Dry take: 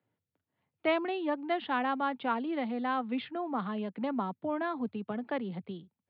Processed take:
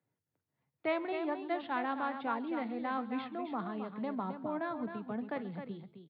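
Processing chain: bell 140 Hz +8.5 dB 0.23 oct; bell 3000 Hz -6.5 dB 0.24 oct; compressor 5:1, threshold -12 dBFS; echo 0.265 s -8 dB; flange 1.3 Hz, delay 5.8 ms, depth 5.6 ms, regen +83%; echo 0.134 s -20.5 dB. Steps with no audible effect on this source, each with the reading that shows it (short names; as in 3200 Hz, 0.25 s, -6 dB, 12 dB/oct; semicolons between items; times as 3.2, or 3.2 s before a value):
compressor, threshold -12 dBFS: input peak -17.0 dBFS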